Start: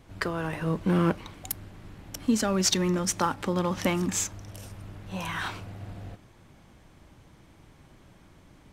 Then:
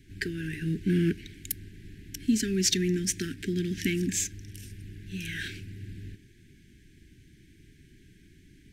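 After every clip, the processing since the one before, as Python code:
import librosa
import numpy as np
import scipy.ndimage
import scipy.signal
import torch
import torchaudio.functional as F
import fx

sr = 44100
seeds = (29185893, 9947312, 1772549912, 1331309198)

y = scipy.signal.sosfilt(scipy.signal.cheby1(5, 1.0, [410.0, 1600.0], 'bandstop', fs=sr, output='sos'), x)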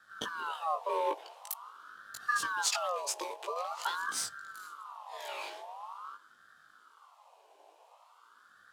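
y = fx.doubler(x, sr, ms=19.0, db=-2.5)
y = fx.ring_lfo(y, sr, carrier_hz=1100.0, swing_pct=35, hz=0.46)
y = y * librosa.db_to_amplitude(-4.5)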